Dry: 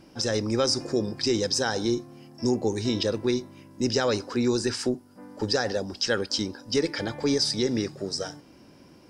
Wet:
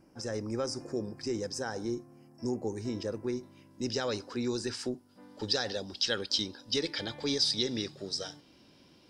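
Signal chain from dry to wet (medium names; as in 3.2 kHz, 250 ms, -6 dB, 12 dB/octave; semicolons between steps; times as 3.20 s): peaking EQ 3.6 kHz -13 dB 0.86 oct, from 3.43 s +3 dB, from 5.09 s +13 dB; trim -8.5 dB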